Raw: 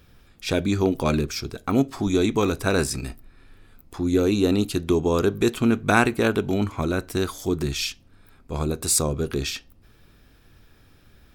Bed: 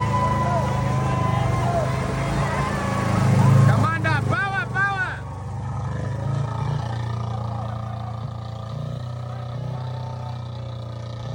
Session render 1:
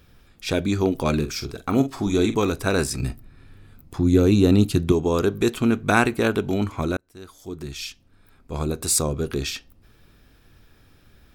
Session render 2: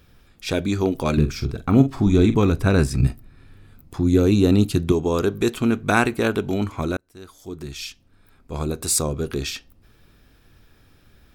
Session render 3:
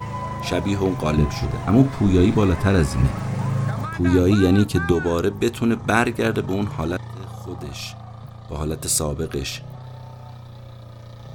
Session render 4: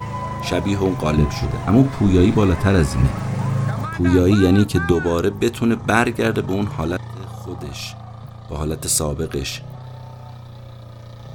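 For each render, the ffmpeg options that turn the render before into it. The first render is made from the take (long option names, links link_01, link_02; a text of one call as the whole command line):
ffmpeg -i in.wav -filter_complex "[0:a]asettb=1/sr,asplit=3[link_01][link_02][link_03];[link_01]atrim=end=1.154[link_04];[link_02]atrim=start=1.15:end=2.35,asetpts=PTS-STARTPTS,afade=type=in:duration=0.004:curve=qsin,afade=type=out:start_time=1.196:duration=0.004:curve=qsin,asplit=2[link_05][link_06];[link_06]adelay=45,volume=-10.5dB[link_07];[link_05][link_07]amix=inputs=2:normalize=0,atrim=end_sample=52920[link_08];[link_03]atrim=start=2.346[link_09];[link_04][link_08]acrossfade=duration=0.004:curve1=hsin:curve2=qsin[link_10];[link_10][link_09]acrossfade=duration=0.004:curve1=qsin:curve2=hsin,asettb=1/sr,asplit=3[link_11][link_12][link_13];[link_11]atrim=end=2.994[link_14];[link_12]atrim=start=2.99:end=4.92,asetpts=PTS-STARTPTS,afade=type=in:duration=0.004:curve=qsin,afade=type=out:start_time=1.926:duration=0.004:curve=qsin,equalizer=frequency=120:width_type=o:width=1.8:gain=10[link_15];[link_13]atrim=start=4.916[link_16];[link_14][link_15]acrossfade=duration=0.004:curve1=hsin:curve2=qsin[link_17];[link_17][link_16]acrossfade=duration=0.004:curve1=qsin:curve2=hsin,asplit=2[link_18][link_19];[link_18]atrim=end=6.97,asetpts=PTS-STARTPTS,afade=type=out:start_time=6.966:duration=0.004:curve=hsin[link_20];[link_19]atrim=start=6.97,asetpts=PTS-STARTPTS,afade=type=in:duration=1.72[link_21];[link_20][link_21]concat=n=2:v=0:a=1" out.wav
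ffmpeg -i in.wav -filter_complex "[0:a]asettb=1/sr,asplit=3[link_01][link_02][link_03];[link_01]atrim=end=1.174[link_04];[link_02]atrim=start=1.17:end=3.07,asetpts=PTS-STARTPTS,afade=type=in:duration=0.004:curve=qsin,afade=type=out:start_time=1.896:duration=0.004:curve=qsin,bass=frequency=250:gain=10,treble=frequency=4000:gain=-6[link_05];[link_03]atrim=start=3.066[link_06];[link_04][link_05]acrossfade=duration=0.004:curve1=hsin:curve2=qsin[link_07];[link_07][link_06]acrossfade=duration=0.004:curve1=qsin:curve2=hsin" out.wav
ffmpeg -i in.wav -i bed.wav -filter_complex "[1:a]volume=-8dB[link_01];[0:a][link_01]amix=inputs=2:normalize=0" out.wav
ffmpeg -i in.wav -af "volume=2dB,alimiter=limit=-1dB:level=0:latency=1" out.wav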